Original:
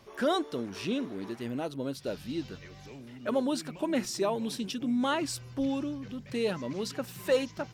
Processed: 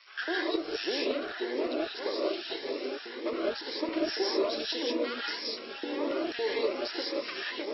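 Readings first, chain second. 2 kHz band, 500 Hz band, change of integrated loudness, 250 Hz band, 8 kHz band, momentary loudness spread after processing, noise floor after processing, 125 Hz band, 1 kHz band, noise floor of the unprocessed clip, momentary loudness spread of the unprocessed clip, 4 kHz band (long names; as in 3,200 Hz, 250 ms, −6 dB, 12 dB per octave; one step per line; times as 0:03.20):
+5.0 dB, +1.0 dB, 0.0 dB, −3.5 dB, below −15 dB, 5 LU, −42 dBFS, below −20 dB, −2.0 dB, −49 dBFS, 9 LU, +5.5 dB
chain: half-wave rectification
bass and treble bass −10 dB, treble +8 dB
delay with a low-pass on its return 880 ms, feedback 49%, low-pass 2,500 Hz, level −10 dB
brick-wall band-pass 130–5,600 Hz
downward compressor 6 to 1, threshold −40 dBFS, peak gain reduction 13.5 dB
parametric band 330 Hz +8.5 dB 0.31 octaves
auto-filter high-pass square 1.8 Hz 410–1,600 Hz
reverb whose tail is shaped and stops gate 220 ms rising, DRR −4 dB
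phaser whose notches keep moving one way rising 1.8 Hz
level +6 dB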